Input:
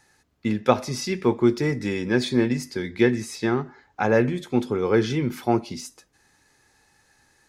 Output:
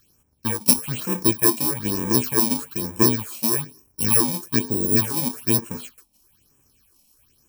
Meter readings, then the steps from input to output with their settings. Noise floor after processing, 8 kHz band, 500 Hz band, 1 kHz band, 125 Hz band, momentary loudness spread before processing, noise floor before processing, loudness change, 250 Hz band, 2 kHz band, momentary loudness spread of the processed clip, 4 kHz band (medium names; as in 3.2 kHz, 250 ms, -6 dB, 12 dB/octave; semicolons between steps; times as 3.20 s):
-64 dBFS, +15.5 dB, -6.5 dB, -3.0 dB, -0.5 dB, 8 LU, -64 dBFS, +4.0 dB, -2.0 dB, -4.5 dB, 9 LU, +5.0 dB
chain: bit-reversed sample order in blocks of 64 samples; phase shifter stages 6, 1.1 Hz, lowest notch 100–4400 Hz; spectral replace 4.71–4.94 s, 850–7300 Hz before; trim +2.5 dB